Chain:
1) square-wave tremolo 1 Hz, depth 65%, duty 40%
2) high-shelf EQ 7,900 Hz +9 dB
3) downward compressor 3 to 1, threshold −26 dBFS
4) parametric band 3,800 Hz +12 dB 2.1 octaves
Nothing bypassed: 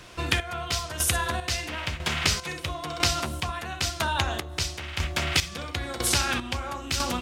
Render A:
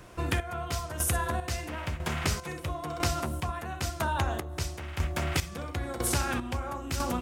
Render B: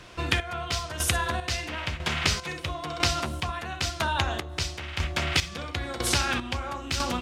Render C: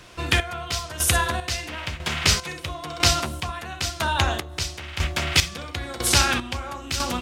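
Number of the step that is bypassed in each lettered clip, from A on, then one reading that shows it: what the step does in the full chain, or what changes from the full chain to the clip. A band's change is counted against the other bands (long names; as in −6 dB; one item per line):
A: 4, 4 kHz band −9.5 dB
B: 2, 8 kHz band −3.5 dB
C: 3, average gain reduction 1.5 dB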